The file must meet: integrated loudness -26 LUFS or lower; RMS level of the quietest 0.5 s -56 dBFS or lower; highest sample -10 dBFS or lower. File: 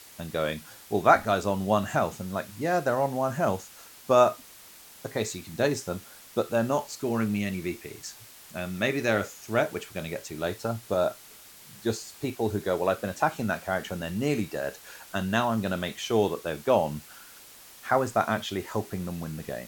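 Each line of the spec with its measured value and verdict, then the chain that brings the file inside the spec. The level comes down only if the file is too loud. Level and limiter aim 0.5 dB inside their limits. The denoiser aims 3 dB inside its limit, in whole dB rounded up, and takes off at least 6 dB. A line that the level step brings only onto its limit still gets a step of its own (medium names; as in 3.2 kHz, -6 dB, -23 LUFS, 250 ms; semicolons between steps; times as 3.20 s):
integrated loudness -28.0 LUFS: pass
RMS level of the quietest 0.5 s -50 dBFS: fail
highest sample -5.0 dBFS: fail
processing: noise reduction 9 dB, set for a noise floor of -50 dBFS; peak limiter -10.5 dBFS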